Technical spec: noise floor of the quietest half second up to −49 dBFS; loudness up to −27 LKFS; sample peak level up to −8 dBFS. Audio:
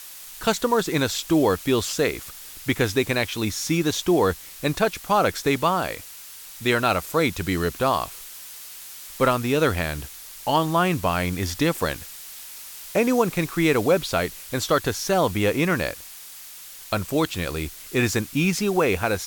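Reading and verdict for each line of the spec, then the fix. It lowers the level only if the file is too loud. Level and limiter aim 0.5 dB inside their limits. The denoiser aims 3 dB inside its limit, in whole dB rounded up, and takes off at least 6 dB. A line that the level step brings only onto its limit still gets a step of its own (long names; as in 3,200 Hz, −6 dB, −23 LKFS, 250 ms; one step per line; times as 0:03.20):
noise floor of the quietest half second −42 dBFS: out of spec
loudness −23.0 LKFS: out of spec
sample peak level −6.5 dBFS: out of spec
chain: broadband denoise 6 dB, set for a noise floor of −42 dBFS
level −4.5 dB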